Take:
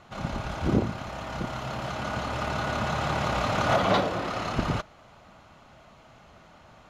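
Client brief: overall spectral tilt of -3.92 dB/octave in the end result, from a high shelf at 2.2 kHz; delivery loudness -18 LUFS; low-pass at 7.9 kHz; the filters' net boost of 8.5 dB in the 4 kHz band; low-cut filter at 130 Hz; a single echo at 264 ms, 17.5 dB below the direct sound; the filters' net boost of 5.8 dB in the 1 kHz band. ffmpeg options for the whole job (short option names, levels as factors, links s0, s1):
-af "highpass=130,lowpass=7900,equalizer=f=1000:t=o:g=6,highshelf=f=2200:g=6,equalizer=f=4000:t=o:g=5,aecho=1:1:264:0.133,volume=2.11"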